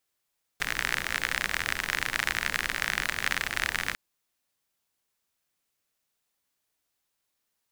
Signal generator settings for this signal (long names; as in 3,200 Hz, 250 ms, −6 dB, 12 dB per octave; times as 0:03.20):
rain-like ticks over hiss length 3.35 s, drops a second 50, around 1,800 Hz, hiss −10 dB